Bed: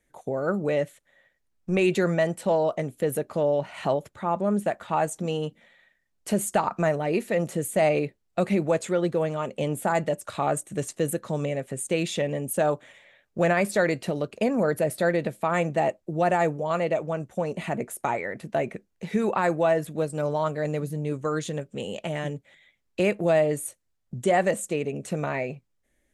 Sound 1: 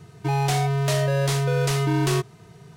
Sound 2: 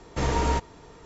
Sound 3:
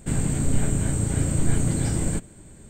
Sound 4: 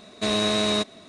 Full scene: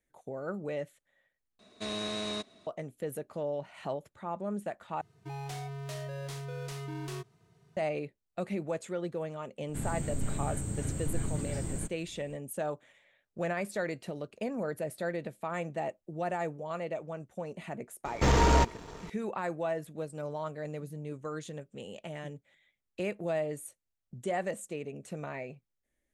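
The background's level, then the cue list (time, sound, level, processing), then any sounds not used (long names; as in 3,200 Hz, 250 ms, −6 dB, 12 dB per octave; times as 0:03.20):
bed −11 dB
0:01.59: overwrite with 4 −12.5 dB
0:05.01: overwrite with 1 −17.5 dB
0:09.68: mix in 3 −11.5 dB
0:18.05: mix in 2 −3 dB + leveller curve on the samples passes 2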